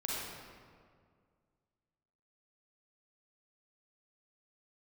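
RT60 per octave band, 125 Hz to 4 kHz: 2.4, 2.3, 2.1, 1.9, 1.5, 1.2 seconds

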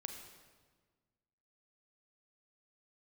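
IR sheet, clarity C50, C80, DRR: 5.5 dB, 7.0 dB, 4.5 dB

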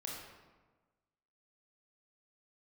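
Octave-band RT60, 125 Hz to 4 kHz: 1.4, 1.4, 1.3, 1.3, 1.0, 0.80 seconds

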